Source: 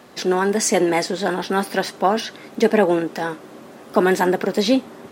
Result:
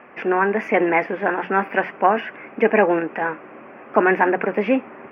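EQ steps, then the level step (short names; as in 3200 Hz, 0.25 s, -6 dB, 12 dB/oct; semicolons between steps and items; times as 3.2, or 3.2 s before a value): elliptic low-pass 2500 Hz, stop band 40 dB; tilt +2.5 dB/oct; notches 60/120/180 Hz; +3.0 dB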